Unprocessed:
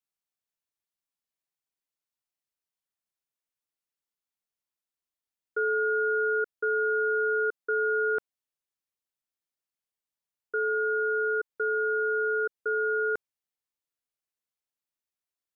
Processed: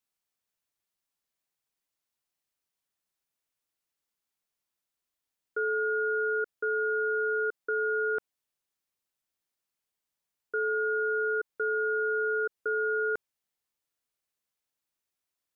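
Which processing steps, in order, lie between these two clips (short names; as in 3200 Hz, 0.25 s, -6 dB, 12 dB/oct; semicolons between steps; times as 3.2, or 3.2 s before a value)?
limiter -27 dBFS, peak gain reduction 7 dB; gain +4.5 dB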